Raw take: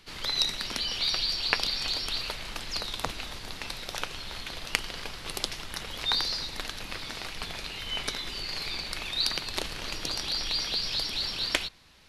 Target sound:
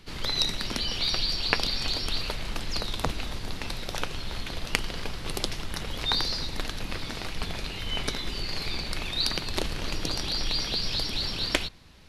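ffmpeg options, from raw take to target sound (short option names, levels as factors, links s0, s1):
-af "lowshelf=f=490:g=9.5"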